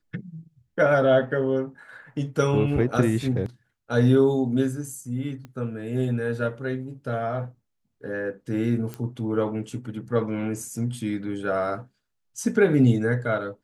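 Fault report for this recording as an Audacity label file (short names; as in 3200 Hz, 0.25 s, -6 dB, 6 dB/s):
5.450000	5.450000	pop -27 dBFS
8.940000	8.940000	pop -19 dBFS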